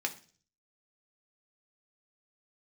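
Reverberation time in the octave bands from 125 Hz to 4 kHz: 0.75, 0.55, 0.45, 0.35, 0.40, 0.50 s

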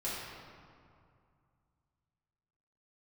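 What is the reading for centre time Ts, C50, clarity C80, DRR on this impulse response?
0.121 s, -2.0 dB, 0.5 dB, -9.5 dB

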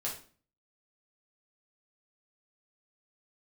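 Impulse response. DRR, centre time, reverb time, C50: -5.0 dB, 27 ms, 0.40 s, 7.0 dB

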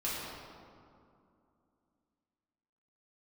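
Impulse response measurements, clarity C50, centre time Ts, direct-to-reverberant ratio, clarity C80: -2.5 dB, 0.141 s, -8.5 dB, -0.5 dB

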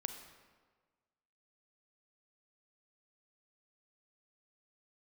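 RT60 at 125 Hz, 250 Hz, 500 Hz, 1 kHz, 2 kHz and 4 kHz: 1.5, 1.5, 1.5, 1.4, 1.2, 1.0 s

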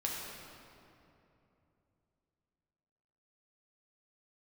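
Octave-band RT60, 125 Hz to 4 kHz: 3.9, 3.5, 3.1, 2.7, 2.2, 1.7 s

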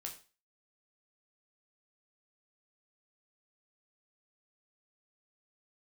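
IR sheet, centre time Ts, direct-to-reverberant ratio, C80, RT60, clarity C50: 17 ms, 0.5 dB, 15.0 dB, 0.35 s, 10.5 dB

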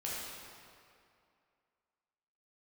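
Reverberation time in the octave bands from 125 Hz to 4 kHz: 2.2, 2.4, 2.4, 2.4, 2.1, 1.7 s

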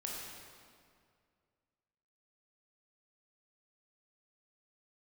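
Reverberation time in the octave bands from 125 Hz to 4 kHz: 2.5, 2.3, 2.2, 2.1, 1.9, 1.6 s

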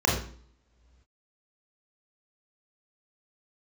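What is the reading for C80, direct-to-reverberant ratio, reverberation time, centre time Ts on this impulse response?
8.5 dB, -3.0 dB, not exponential, 39 ms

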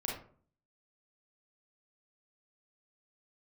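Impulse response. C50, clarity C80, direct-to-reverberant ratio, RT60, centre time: 3.0 dB, 9.0 dB, -3.0 dB, 0.50 s, 40 ms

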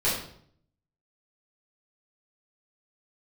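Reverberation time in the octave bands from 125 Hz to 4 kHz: 0.90, 0.75, 0.65, 0.60, 0.50, 0.50 s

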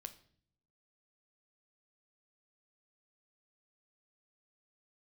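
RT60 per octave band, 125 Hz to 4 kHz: 1.1, 1.0, 0.65, 0.45, 0.50, 0.50 s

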